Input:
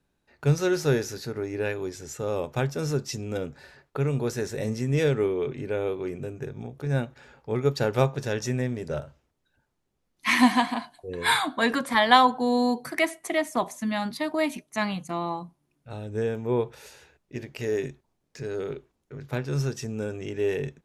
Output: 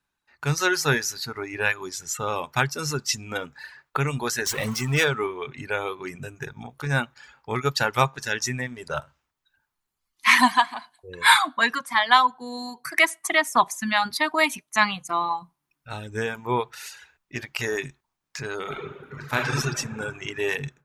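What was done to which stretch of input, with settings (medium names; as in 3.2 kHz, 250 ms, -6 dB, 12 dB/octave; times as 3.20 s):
4.46–5.05 s: jump at every zero crossing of -34 dBFS
18.62–19.57 s: reverb throw, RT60 2.5 s, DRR -3.5 dB
whole clip: reverb removal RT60 1.6 s; resonant low shelf 740 Hz -10 dB, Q 1.5; level rider gain up to 12 dB; trim -1 dB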